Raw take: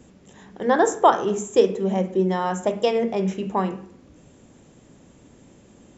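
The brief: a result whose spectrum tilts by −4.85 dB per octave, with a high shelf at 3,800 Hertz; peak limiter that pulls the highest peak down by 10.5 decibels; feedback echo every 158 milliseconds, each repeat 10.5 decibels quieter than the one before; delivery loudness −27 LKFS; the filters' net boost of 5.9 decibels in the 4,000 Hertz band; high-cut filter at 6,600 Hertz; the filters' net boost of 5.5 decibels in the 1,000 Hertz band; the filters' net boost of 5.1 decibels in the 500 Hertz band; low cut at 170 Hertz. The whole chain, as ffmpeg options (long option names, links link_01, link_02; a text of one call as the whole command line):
ffmpeg -i in.wav -af "highpass=170,lowpass=6600,equalizer=frequency=500:width_type=o:gain=5,equalizer=frequency=1000:width_type=o:gain=4.5,highshelf=frequency=3800:gain=8.5,equalizer=frequency=4000:width_type=o:gain=3,alimiter=limit=-9dB:level=0:latency=1,aecho=1:1:158|316|474:0.299|0.0896|0.0269,volume=-6.5dB" out.wav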